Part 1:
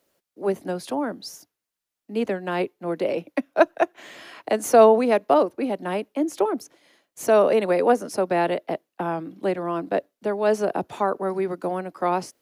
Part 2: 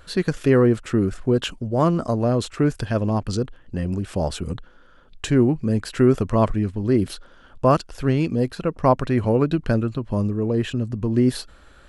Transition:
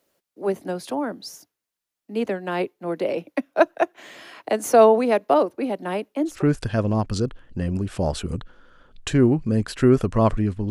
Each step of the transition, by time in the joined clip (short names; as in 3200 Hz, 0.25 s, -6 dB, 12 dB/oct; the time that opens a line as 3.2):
part 1
6.35 switch to part 2 from 2.52 s, crossfade 0.20 s